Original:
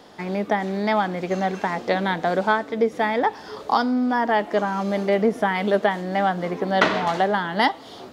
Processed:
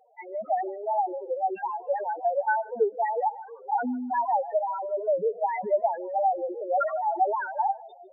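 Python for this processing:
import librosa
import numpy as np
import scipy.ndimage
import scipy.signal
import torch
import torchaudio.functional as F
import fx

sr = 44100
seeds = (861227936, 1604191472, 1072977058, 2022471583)

p1 = fx.envelope_sharpen(x, sr, power=2.0, at=(6.04, 6.86))
p2 = scipy.signal.sosfilt(scipy.signal.butter(2, 520.0, 'highpass', fs=sr, output='sos'), p1)
p3 = fx.transient(p2, sr, attack_db=3, sustain_db=8)
p4 = fx.spec_topn(p3, sr, count=2)
p5 = p4 + fx.echo_feedback(p4, sr, ms=151, feedback_pct=24, wet_db=-23.5, dry=0)
y = fx.record_warp(p5, sr, rpm=78.0, depth_cents=160.0)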